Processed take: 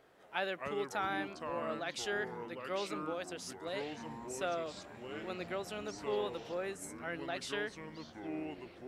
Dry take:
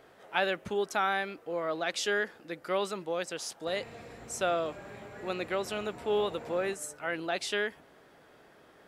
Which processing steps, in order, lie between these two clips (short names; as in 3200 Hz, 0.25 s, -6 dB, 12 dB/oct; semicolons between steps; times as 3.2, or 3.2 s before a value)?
echoes that change speed 0.145 s, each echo -5 st, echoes 3, each echo -6 dB; gain -7.5 dB